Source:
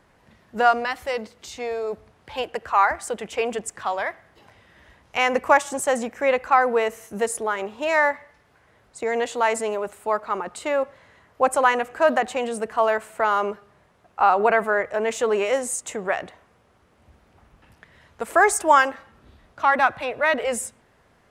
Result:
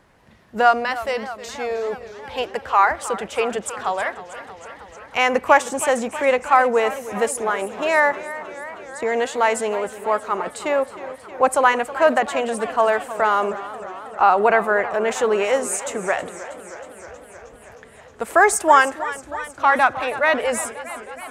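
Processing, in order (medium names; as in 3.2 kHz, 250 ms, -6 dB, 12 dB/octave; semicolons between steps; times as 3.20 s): modulated delay 316 ms, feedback 74%, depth 116 cents, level -15 dB; trim +2.5 dB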